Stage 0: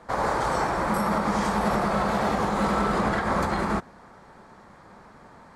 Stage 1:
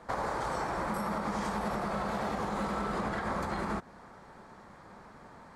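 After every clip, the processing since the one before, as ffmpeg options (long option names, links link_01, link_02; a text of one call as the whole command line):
ffmpeg -i in.wav -af "acompressor=threshold=-28dB:ratio=5,volume=-2.5dB" out.wav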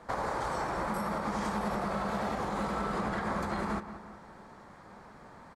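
ffmpeg -i in.wav -filter_complex "[0:a]asplit=2[link_01][link_02];[link_02]adelay=181,lowpass=frequency=2900:poles=1,volume=-12dB,asplit=2[link_03][link_04];[link_04]adelay=181,lowpass=frequency=2900:poles=1,volume=0.49,asplit=2[link_05][link_06];[link_06]adelay=181,lowpass=frequency=2900:poles=1,volume=0.49,asplit=2[link_07][link_08];[link_08]adelay=181,lowpass=frequency=2900:poles=1,volume=0.49,asplit=2[link_09][link_10];[link_10]adelay=181,lowpass=frequency=2900:poles=1,volume=0.49[link_11];[link_01][link_03][link_05][link_07][link_09][link_11]amix=inputs=6:normalize=0" out.wav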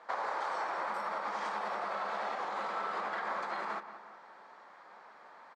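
ffmpeg -i in.wav -af "highpass=660,lowpass=4400" out.wav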